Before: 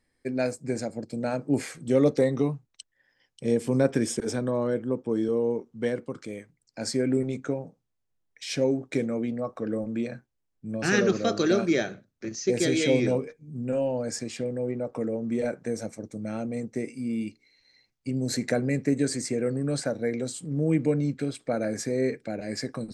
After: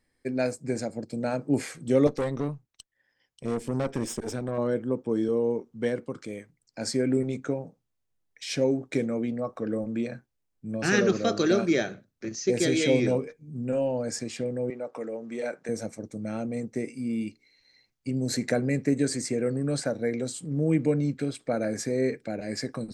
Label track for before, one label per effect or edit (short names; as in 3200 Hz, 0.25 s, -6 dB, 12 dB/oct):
2.070000	4.580000	tube stage drive 23 dB, bias 0.7
14.700000	15.690000	weighting filter A